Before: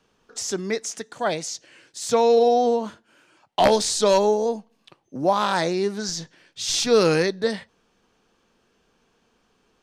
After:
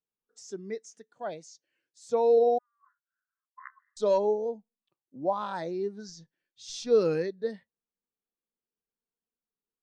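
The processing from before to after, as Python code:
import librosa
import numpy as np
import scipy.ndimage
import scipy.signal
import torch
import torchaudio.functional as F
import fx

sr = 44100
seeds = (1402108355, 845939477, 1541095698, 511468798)

y = fx.brickwall_bandpass(x, sr, low_hz=1000.0, high_hz=2100.0, at=(2.58, 3.97))
y = fx.spectral_expand(y, sr, expansion=1.5)
y = y * librosa.db_to_amplitude(-4.5)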